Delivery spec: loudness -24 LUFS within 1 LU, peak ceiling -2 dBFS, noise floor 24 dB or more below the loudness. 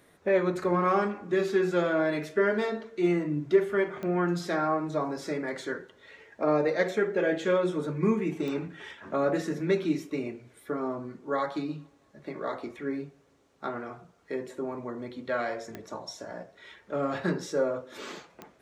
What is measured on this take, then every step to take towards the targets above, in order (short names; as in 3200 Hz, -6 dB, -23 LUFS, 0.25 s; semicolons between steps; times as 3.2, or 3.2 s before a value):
clicks 4; loudness -29.5 LUFS; peak -11.5 dBFS; loudness target -24.0 LUFS
-> de-click; gain +5.5 dB